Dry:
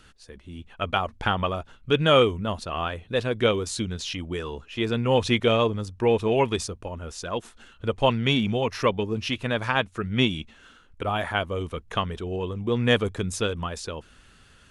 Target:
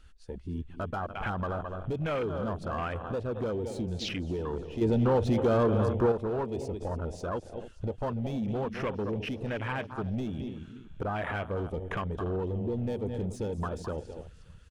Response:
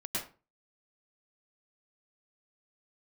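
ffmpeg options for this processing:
-filter_complex "[0:a]asplit=2[link_01][link_02];[link_02]aecho=0:1:214:0.2[link_03];[link_01][link_03]amix=inputs=2:normalize=0,acompressor=threshold=-36dB:ratio=2.5,asplit=2[link_04][link_05];[link_05]aecho=0:1:289|578|867|1156|1445:0.2|0.104|0.054|0.0281|0.0146[link_06];[link_04][link_06]amix=inputs=2:normalize=0,asoftclip=type=hard:threshold=-33dB,afwtdn=0.01,asettb=1/sr,asplit=3[link_07][link_08][link_09];[link_07]atrim=end=4.814[link_10];[link_08]atrim=start=4.81:end=6.12,asetpts=PTS-STARTPTS,afade=type=in:duration=0.004:curve=qsin,afade=type=out:start_time=1.306:duration=0.004:curve=qsin,acontrast=83[link_11];[link_09]atrim=start=6.116[link_12];[link_10][link_11]acrossfade=duration=0.004:curve1=hsin:curve2=qsin[link_13];[link_13][link_12]acrossfade=duration=0.004:curve1=qsin:curve2=hsin,volume=5.5dB"

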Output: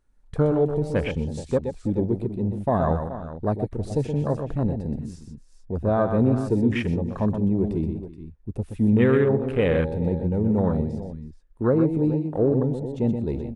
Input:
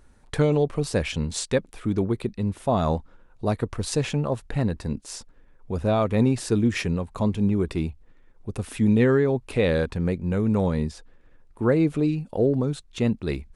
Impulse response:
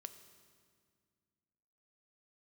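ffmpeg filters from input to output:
-filter_complex "[0:a]asplit=2[link_01][link_02];[link_02]aecho=0:1:124|324|426:0.447|0.133|0.237[link_03];[link_01][link_03]amix=inputs=2:normalize=0,afwtdn=0.0316"

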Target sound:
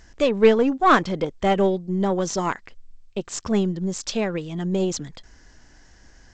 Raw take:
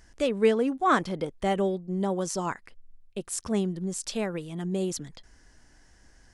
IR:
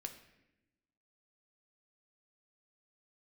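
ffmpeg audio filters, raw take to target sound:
-af "aeval=exprs='0.299*(cos(1*acos(clip(val(0)/0.299,-1,1)))-cos(1*PI/2))+0.0075*(cos(2*acos(clip(val(0)/0.299,-1,1)))-cos(2*PI/2))+0.00299*(cos(5*acos(clip(val(0)/0.299,-1,1)))-cos(5*PI/2))+0.015*(cos(6*acos(clip(val(0)/0.299,-1,1)))-cos(6*PI/2))+0.00376*(cos(7*acos(clip(val(0)/0.299,-1,1)))-cos(7*PI/2))':channel_layout=same,volume=6.5dB" -ar 16000 -c:a g722

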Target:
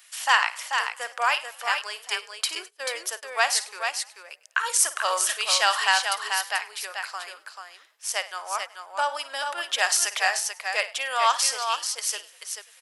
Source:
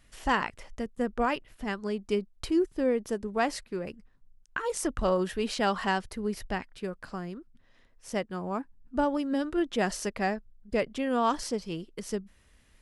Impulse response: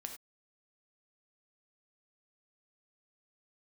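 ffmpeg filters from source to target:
-filter_complex "[0:a]highshelf=frequency=4300:gain=-9.5,asplit=2[link_01][link_02];[link_02]asplit=3[link_03][link_04][link_05];[link_03]adelay=100,afreqshift=47,volume=-21.5dB[link_06];[link_04]adelay=200,afreqshift=94,volume=-29dB[link_07];[link_05]adelay=300,afreqshift=141,volume=-36.6dB[link_08];[link_06][link_07][link_08]amix=inputs=3:normalize=0[link_09];[link_01][link_09]amix=inputs=2:normalize=0,aresample=32000,aresample=44100,aderivative,bandreject=frequency=2000:width=28,asplit=2[link_10][link_11];[link_11]aecho=0:1:54|437:0.2|0.501[link_12];[link_10][link_12]amix=inputs=2:normalize=0,asettb=1/sr,asplit=3[link_13][link_14][link_15];[link_13]atrim=end=2.554[link_16];[link_14]atrim=start=2.55:end=3.23,asetpts=PTS-STARTPTS,afade=type=in:duration=0.004:curve=qsin,afade=type=out:start_time=0.676:duration=0.004:curve=qsin,agate=range=-20dB:threshold=-54dB:ratio=16:detection=peak[link_17];[link_15]atrim=start=3.226[link_18];[link_16][link_17]acrossfade=duration=0.004:curve1=hsin:curve2=qsin[link_19];[link_19][link_18]acrossfade=duration=0.004:curve1=qsin:curve2=hsin,highpass=frequency=650:width=0.5412,highpass=frequency=650:width=1.3066,alimiter=level_in=28.5dB:limit=-1dB:release=50:level=0:latency=1,volume=-5dB"

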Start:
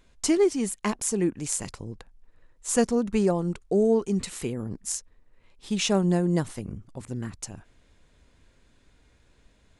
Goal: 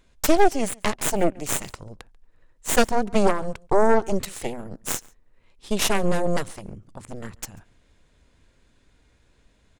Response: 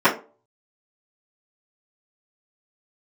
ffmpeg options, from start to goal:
-filter_complex "[0:a]aeval=exprs='0.376*(cos(1*acos(clip(val(0)/0.376,-1,1)))-cos(1*PI/2))+0.168*(cos(6*acos(clip(val(0)/0.376,-1,1)))-cos(6*PI/2))':channel_layout=same,asplit=2[link_01][link_02];[link_02]adelay=139.9,volume=-25dB,highshelf=frequency=4000:gain=-3.15[link_03];[link_01][link_03]amix=inputs=2:normalize=0"

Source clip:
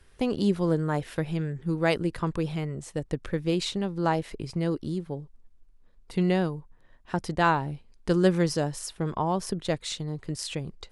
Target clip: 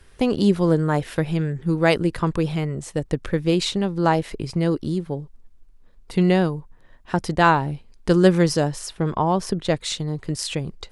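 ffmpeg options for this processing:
ffmpeg -i in.wav -filter_complex "[0:a]asettb=1/sr,asplit=3[link_01][link_02][link_03];[link_01]atrim=end=8.684[link_04];[link_02]atrim=start=8.68:end=9.76,asetpts=PTS-STARTPTS,afade=type=in:duration=0.004:curve=qsin,afade=type=out:start_time=1.076:duration=0.004:curve=qsin,highshelf=frequency=8900:gain=-8.5[link_05];[link_03]atrim=start=9.756[link_06];[link_04][link_05]acrossfade=duration=0.004:curve1=hsin:curve2=qsin[link_07];[link_07][link_06]acrossfade=duration=0.004:curve1=qsin:curve2=hsin,volume=6.5dB" out.wav

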